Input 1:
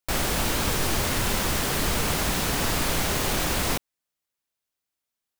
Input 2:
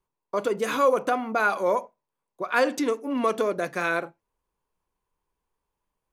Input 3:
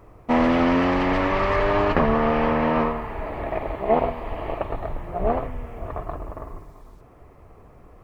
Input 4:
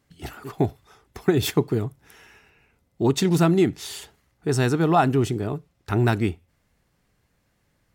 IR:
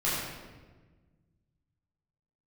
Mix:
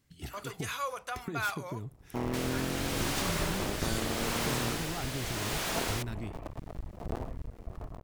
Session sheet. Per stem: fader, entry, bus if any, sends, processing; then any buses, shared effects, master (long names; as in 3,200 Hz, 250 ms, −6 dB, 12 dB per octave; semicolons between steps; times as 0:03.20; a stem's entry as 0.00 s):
−15.0 dB, 2.25 s, no send, mid-hump overdrive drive 33 dB, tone 6,900 Hz, clips at −11.5 dBFS; rotating-speaker cabinet horn 0.8 Hz
0:01.63 −2.5 dB → 0:01.83 −14 dB, 0.00 s, no send, guitar amp tone stack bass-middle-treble 10-0-10
−17.0 dB, 1.85 s, no send, sub-harmonics by changed cycles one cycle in 2, muted; low-shelf EQ 340 Hz +11.5 dB
−1.5 dB, 0.00 s, no send, parametric band 740 Hz −9 dB 2.5 octaves; brickwall limiter −17 dBFS, peak gain reduction 7 dB; downward compressor 10 to 1, threshold −34 dBFS, peak gain reduction 13.5 dB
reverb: not used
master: no processing